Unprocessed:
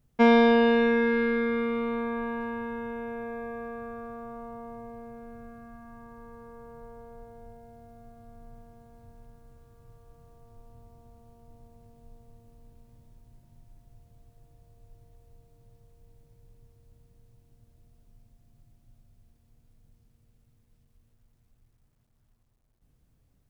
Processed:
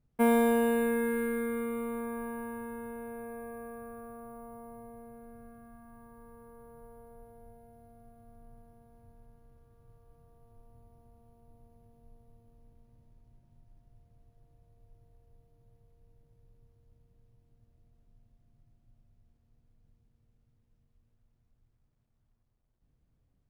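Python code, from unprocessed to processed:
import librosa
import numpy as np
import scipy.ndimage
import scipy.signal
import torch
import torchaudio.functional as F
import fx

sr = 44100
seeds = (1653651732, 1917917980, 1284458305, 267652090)

y = fx.high_shelf(x, sr, hz=2900.0, db=-10.5)
y = np.repeat(y[::4], 4)[:len(y)]
y = y * librosa.db_to_amplitude(-5.5)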